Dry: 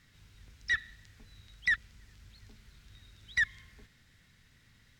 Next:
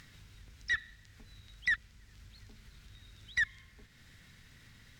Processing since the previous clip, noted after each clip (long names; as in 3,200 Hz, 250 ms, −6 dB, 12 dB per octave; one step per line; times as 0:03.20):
upward compression, threshold −46 dBFS
level −2 dB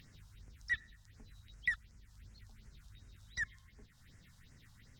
all-pass phaser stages 4, 2.7 Hz, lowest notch 340–3,700 Hz
level −2.5 dB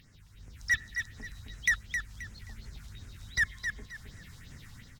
automatic gain control gain up to 11 dB
hard clipping −21 dBFS, distortion −11 dB
repeating echo 265 ms, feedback 27%, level −7 dB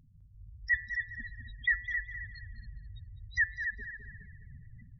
hum removal 176.9 Hz, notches 30
gate on every frequency bin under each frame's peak −10 dB strong
tape delay 204 ms, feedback 48%, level −7 dB, low-pass 2,100 Hz